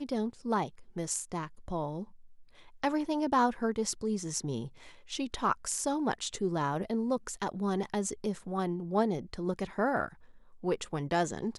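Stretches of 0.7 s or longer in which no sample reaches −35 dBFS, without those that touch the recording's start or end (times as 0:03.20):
0:02.03–0:02.84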